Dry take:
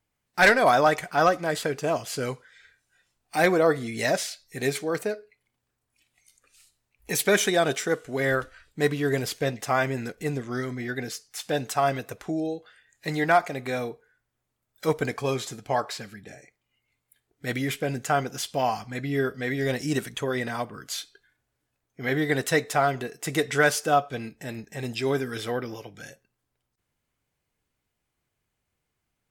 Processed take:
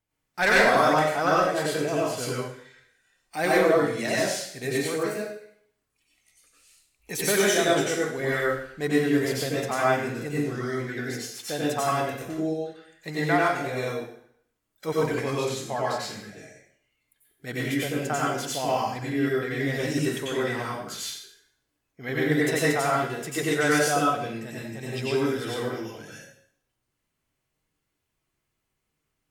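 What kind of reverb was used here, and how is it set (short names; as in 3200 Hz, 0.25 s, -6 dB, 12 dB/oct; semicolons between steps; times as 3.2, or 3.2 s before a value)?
plate-style reverb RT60 0.62 s, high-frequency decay 1×, pre-delay 80 ms, DRR -6 dB; gain -6 dB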